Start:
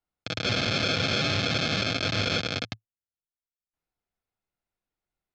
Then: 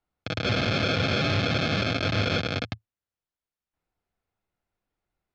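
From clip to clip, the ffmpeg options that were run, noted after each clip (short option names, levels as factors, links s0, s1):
-filter_complex "[0:a]lowpass=f=2300:p=1,equalizer=f=82:t=o:w=0.48:g=4,asplit=2[s0][s1];[s1]alimiter=level_in=1.06:limit=0.0631:level=0:latency=1,volume=0.944,volume=1.12[s2];[s0][s2]amix=inputs=2:normalize=0"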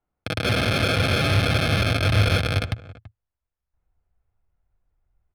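-filter_complex "[0:a]asplit=2[s0][s1];[s1]adelay=332.4,volume=0.126,highshelf=f=4000:g=-7.48[s2];[s0][s2]amix=inputs=2:normalize=0,asubboost=boost=8.5:cutoff=86,adynamicsmooth=sensitivity=5.5:basefreq=2100,volume=1.5"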